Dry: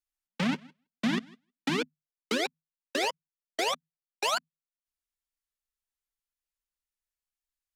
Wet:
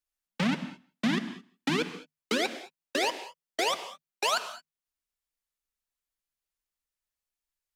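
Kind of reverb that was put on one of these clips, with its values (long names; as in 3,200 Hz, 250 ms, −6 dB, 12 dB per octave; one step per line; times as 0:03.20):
reverb whose tail is shaped and stops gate 240 ms flat, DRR 11 dB
level +1 dB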